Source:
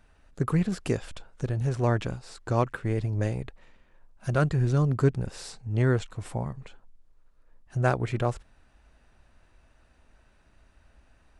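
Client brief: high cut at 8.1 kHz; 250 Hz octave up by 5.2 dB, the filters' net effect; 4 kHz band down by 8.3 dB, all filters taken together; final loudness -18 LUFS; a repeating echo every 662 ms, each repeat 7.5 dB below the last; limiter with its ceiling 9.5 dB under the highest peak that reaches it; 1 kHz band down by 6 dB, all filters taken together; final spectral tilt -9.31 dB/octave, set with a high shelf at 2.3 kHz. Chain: low-pass 8.1 kHz; peaking EQ 250 Hz +8 dB; peaking EQ 1 kHz -8 dB; treble shelf 2.3 kHz -5 dB; peaking EQ 4 kHz -5.5 dB; peak limiter -17 dBFS; feedback delay 662 ms, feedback 42%, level -7.5 dB; trim +11.5 dB

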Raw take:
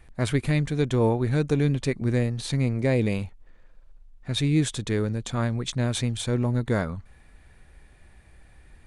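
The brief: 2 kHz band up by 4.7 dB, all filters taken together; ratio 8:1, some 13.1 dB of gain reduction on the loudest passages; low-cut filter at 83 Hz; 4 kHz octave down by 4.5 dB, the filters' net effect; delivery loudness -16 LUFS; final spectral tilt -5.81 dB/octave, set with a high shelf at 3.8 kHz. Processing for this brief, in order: high-pass 83 Hz; peaking EQ 2 kHz +8 dB; treble shelf 3.8 kHz -5.5 dB; peaking EQ 4 kHz -4.5 dB; compression 8:1, threshold -32 dBFS; trim +20.5 dB

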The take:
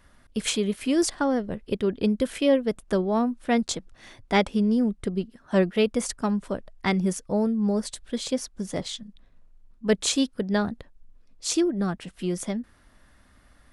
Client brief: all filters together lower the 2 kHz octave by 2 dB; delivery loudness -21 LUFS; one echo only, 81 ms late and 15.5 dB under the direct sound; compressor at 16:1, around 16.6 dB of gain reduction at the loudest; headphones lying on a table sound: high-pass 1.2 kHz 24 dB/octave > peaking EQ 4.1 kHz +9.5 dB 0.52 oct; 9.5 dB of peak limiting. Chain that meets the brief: peaking EQ 2 kHz -3 dB; compression 16:1, threshold -32 dBFS; peak limiter -28.5 dBFS; high-pass 1.2 kHz 24 dB/octave; peaking EQ 4.1 kHz +9.5 dB 0.52 oct; delay 81 ms -15.5 dB; trim +20.5 dB

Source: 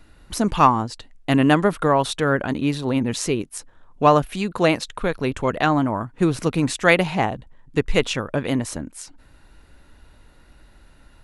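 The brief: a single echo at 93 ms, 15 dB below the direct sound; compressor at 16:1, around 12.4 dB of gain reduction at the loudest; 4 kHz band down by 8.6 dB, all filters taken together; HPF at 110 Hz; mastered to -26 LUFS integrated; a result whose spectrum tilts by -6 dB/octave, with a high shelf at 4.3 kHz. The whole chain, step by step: high-pass 110 Hz; peaking EQ 4 kHz -9 dB; treble shelf 4.3 kHz -6 dB; compression 16:1, threshold -22 dBFS; delay 93 ms -15 dB; trim +3 dB

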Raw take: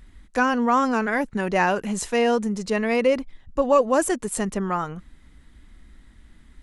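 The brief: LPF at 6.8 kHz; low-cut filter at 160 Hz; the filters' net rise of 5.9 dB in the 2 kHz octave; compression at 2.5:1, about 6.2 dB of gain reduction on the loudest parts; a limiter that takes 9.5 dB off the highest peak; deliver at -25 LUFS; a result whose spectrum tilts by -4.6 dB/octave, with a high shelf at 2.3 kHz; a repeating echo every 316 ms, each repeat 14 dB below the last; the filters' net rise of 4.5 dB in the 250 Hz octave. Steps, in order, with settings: high-pass 160 Hz; low-pass 6.8 kHz; peaking EQ 250 Hz +6 dB; peaking EQ 2 kHz +5.5 dB; treble shelf 2.3 kHz +4.5 dB; compression 2.5:1, threshold -21 dBFS; peak limiter -19 dBFS; feedback delay 316 ms, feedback 20%, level -14 dB; trim +3 dB

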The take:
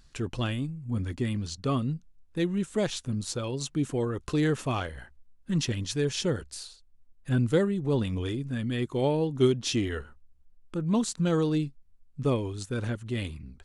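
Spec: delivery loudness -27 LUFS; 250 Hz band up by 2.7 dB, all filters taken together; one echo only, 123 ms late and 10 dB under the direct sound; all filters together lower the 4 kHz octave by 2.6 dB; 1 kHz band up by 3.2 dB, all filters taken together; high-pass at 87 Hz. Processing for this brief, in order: high-pass 87 Hz; peaking EQ 250 Hz +3.5 dB; peaking EQ 1 kHz +4 dB; peaking EQ 4 kHz -3.5 dB; delay 123 ms -10 dB; trim +0.5 dB

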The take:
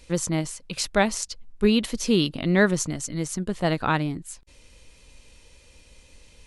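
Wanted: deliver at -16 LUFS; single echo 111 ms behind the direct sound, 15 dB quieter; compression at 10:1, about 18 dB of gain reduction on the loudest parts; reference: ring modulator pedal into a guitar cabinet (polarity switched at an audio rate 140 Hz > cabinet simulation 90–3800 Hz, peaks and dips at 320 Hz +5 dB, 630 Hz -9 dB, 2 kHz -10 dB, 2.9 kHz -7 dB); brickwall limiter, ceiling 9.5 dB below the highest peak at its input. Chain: compression 10:1, threshold -33 dBFS; peak limiter -28.5 dBFS; delay 111 ms -15 dB; polarity switched at an audio rate 140 Hz; cabinet simulation 90–3800 Hz, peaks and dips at 320 Hz +5 dB, 630 Hz -9 dB, 2 kHz -10 dB, 2.9 kHz -7 dB; trim +26 dB

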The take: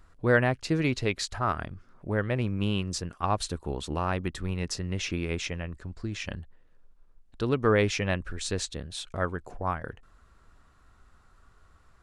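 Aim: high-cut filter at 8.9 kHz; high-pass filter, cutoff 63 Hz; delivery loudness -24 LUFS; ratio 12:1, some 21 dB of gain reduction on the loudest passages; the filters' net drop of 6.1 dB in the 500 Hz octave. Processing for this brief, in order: high-pass 63 Hz; low-pass 8.9 kHz; peaking EQ 500 Hz -7.5 dB; compression 12:1, threshold -42 dBFS; trim +22.5 dB

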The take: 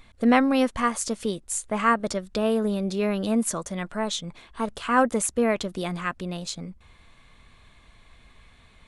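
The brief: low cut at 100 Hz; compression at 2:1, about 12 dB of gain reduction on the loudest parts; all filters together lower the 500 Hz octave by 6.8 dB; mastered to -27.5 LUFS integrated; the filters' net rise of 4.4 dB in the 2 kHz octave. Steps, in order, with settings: high-pass 100 Hz; peaking EQ 500 Hz -8.5 dB; peaking EQ 2 kHz +6 dB; compression 2:1, threshold -37 dBFS; trim +7.5 dB

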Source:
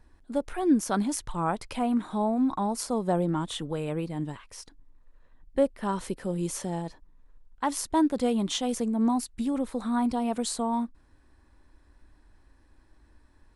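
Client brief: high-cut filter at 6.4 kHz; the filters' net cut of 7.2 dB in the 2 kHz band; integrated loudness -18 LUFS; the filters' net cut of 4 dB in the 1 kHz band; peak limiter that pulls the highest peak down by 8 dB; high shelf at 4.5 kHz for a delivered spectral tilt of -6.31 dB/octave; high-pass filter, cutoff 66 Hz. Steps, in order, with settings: high-pass 66 Hz; low-pass 6.4 kHz; peaking EQ 1 kHz -3.5 dB; peaking EQ 2 kHz -8 dB; treble shelf 4.5 kHz -4 dB; trim +14 dB; peak limiter -8 dBFS

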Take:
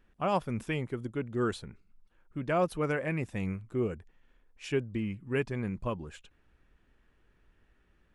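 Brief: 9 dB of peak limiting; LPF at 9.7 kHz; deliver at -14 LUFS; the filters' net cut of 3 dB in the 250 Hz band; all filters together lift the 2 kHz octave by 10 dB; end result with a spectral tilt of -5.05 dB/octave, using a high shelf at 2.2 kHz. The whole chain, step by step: low-pass 9.7 kHz; peaking EQ 250 Hz -4.5 dB; peaking EQ 2 kHz +8.5 dB; treble shelf 2.2 kHz +8 dB; trim +20.5 dB; peak limiter -1.5 dBFS

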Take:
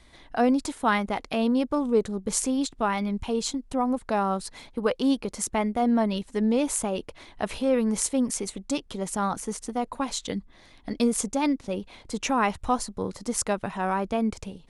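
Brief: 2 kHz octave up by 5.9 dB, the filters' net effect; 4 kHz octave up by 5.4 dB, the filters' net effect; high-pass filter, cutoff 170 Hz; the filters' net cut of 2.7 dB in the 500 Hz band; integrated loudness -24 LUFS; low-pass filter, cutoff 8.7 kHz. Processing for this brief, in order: high-pass 170 Hz; low-pass 8.7 kHz; peaking EQ 500 Hz -3.5 dB; peaking EQ 2 kHz +6.5 dB; peaking EQ 4 kHz +5 dB; trim +3.5 dB

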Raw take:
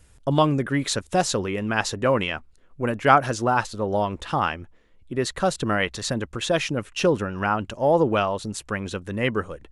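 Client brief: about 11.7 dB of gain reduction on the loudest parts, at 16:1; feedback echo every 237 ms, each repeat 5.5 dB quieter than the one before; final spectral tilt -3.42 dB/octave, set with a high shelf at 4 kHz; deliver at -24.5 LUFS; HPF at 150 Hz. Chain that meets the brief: high-pass 150 Hz; treble shelf 4 kHz +6.5 dB; compression 16:1, threshold -20 dBFS; feedback delay 237 ms, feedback 53%, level -5.5 dB; trim +1.5 dB

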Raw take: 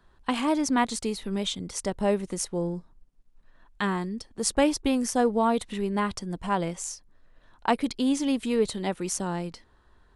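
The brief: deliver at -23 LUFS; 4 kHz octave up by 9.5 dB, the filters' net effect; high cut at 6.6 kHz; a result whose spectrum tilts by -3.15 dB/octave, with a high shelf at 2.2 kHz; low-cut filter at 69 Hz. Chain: high-pass 69 Hz; low-pass 6.6 kHz; treble shelf 2.2 kHz +4.5 dB; peaking EQ 4 kHz +8.5 dB; trim +3 dB

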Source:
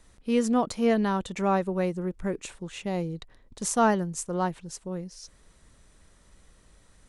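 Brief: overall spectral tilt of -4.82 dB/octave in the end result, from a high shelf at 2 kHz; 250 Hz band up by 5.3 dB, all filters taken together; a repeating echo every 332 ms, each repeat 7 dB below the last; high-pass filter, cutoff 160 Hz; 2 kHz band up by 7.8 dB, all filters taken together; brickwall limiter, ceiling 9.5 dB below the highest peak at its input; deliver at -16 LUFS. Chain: high-pass 160 Hz; peaking EQ 250 Hz +7.5 dB; treble shelf 2 kHz +3.5 dB; peaking EQ 2 kHz +8 dB; peak limiter -15 dBFS; feedback delay 332 ms, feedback 45%, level -7 dB; trim +10.5 dB

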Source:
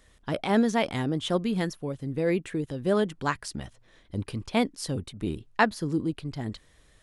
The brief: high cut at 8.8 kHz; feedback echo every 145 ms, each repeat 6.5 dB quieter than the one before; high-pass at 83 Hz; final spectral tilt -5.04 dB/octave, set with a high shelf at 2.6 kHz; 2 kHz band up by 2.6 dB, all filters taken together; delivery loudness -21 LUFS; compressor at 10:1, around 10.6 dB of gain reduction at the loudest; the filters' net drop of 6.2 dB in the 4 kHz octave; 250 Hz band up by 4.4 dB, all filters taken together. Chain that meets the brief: high-pass 83 Hz; low-pass 8.8 kHz; peaking EQ 250 Hz +5.5 dB; peaking EQ 2 kHz +6 dB; treble shelf 2.6 kHz -3.5 dB; peaking EQ 4 kHz -8 dB; compression 10:1, threshold -24 dBFS; feedback delay 145 ms, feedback 47%, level -6.5 dB; trim +9.5 dB

